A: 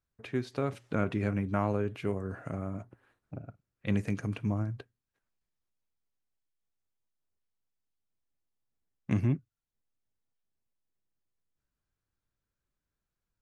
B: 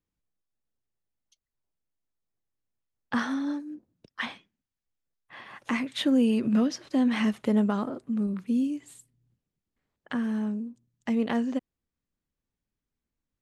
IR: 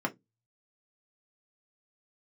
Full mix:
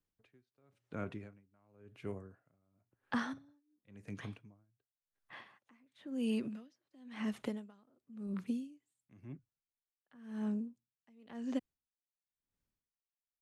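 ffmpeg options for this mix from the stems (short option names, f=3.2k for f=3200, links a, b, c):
-filter_complex "[0:a]volume=-9.5dB,asplit=2[a][b];[1:a]volume=-2.5dB[c];[b]apad=whole_len=591485[d];[c][d]sidechaincompress=threshold=-55dB:ratio=8:attack=8.7:release=437[e];[a][e]amix=inputs=2:normalize=0,acrossover=split=200|2000[f][g][h];[f]acompressor=threshold=-41dB:ratio=4[i];[g]acompressor=threshold=-34dB:ratio=4[j];[h]acompressor=threshold=-46dB:ratio=4[k];[i][j][k]amix=inputs=3:normalize=0,aeval=exprs='val(0)*pow(10,-33*(0.5-0.5*cos(2*PI*0.95*n/s))/20)':c=same"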